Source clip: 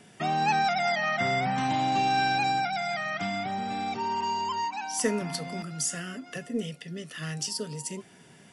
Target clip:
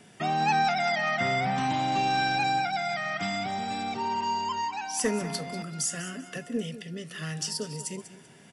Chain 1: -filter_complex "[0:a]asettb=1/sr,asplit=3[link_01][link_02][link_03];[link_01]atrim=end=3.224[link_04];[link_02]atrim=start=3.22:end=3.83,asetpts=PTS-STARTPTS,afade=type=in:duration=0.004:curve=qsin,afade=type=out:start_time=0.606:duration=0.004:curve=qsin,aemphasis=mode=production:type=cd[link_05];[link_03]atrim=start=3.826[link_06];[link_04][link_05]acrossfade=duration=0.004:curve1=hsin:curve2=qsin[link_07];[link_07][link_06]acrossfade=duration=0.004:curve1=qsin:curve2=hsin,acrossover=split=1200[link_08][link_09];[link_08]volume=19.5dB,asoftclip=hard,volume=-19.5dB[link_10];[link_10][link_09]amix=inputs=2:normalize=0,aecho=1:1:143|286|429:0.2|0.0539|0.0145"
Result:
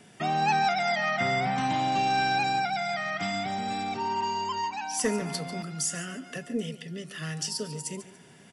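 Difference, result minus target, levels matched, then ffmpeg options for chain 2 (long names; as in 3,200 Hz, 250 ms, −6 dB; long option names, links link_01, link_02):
echo 50 ms early
-filter_complex "[0:a]asettb=1/sr,asplit=3[link_01][link_02][link_03];[link_01]atrim=end=3.224[link_04];[link_02]atrim=start=3.22:end=3.83,asetpts=PTS-STARTPTS,afade=type=in:duration=0.004:curve=qsin,afade=type=out:start_time=0.606:duration=0.004:curve=qsin,aemphasis=mode=production:type=cd[link_05];[link_03]atrim=start=3.826[link_06];[link_04][link_05]acrossfade=duration=0.004:curve1=hsin:curve2=qsin[link_07];[link_07][link_06]acrossfade=duration=0.004:curve1=qsin:curve2=hsin,acrossover=split=1200[link_08][link_09];[link_08]volume=19.5dB,asoftclip=hard,volume=-19.5dB[link_10];[link_10][link_09]amix=inputs=2:normalize=0,aecho=1:1:193|386|579:0.2|0.0539|0.0145"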